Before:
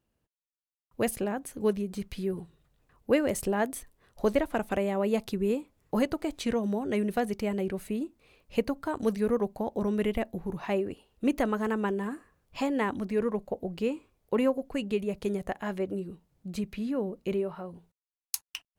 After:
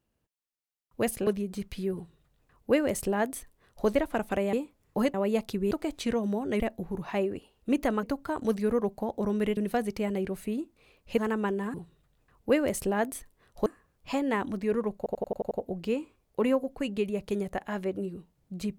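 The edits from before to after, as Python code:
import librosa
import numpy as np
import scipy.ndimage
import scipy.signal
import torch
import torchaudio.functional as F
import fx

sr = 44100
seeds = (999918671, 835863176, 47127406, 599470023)

y = fx.edit(x, sr, fx.cut(start_s=1.27, length_s=0.4),
    fx.duplicate(start_s=2.35, length_s=1.92, to_s=12.14),
    fx.move(start_s=4.93, length_s=0.57, to_s=6.11),
    fx.swap(start_s=7.0, length_s=1.61, other_s=10.15, other_length_s=1.43),
    fx.stutter(start_s=13.45, slice_s=0.09, count=7), tone=tone)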